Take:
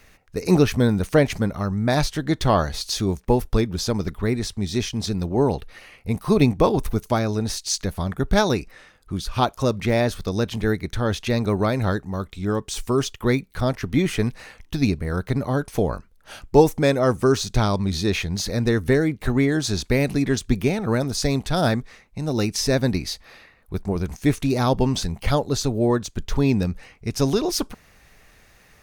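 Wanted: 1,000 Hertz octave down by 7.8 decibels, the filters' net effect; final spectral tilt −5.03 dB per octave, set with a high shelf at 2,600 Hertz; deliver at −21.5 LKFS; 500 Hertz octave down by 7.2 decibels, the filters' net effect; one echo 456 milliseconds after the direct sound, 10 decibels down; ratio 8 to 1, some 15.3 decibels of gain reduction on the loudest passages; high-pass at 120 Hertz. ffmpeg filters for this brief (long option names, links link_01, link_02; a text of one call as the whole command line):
ffmpeg -i in.wav -af "highpass=120,equalizer=frequency=500:width_type=o:gain=-7.5,equalizer=frequency=1000:width_type=o:gain=-7,highshelf=frequency=2600:gain=-4.5,acompressor=threshold=-31dB:ratio=8,aecho=1:1:456:0.316,volume=14.5dB" out.wav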